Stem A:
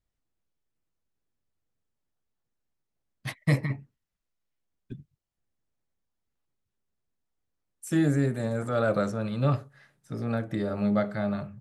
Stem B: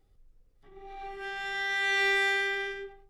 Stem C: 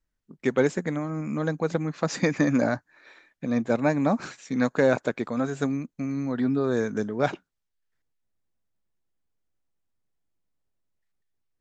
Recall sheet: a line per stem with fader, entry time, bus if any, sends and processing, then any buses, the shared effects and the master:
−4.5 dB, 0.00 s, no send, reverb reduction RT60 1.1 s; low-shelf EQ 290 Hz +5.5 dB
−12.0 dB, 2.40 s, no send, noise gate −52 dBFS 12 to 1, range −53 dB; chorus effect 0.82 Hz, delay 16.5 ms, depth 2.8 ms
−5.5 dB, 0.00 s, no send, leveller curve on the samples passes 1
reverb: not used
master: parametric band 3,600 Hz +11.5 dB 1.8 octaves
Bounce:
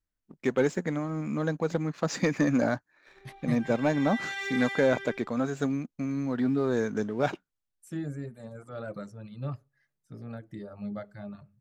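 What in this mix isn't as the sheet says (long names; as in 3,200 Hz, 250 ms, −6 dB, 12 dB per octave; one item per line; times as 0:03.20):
stem A −4.5 dB → −13.0 dB
stem B −12.0 dB → −5.5 dB
master: missing parametric band 3,600 Hz +11.5 dB 1.8 octaves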